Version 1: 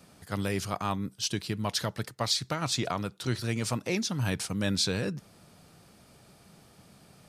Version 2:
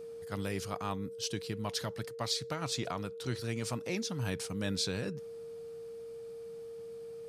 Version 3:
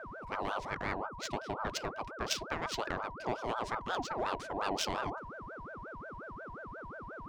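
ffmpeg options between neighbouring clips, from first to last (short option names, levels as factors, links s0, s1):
-af "aeval=exprs='val(0)+0.0158*sin(2*PI*460*n/s)':c=same,volume=0.501"
-af "highshelf=f=3500:g=10,adynamicsmooth=sensitivity=1.5:basefreq=1700,aeval=exprs='val(0)*sin(2*PI*800*n/s+800*0.4/5.6*sin(2*PI*5.6*n/s))':c=same,volume=1.41"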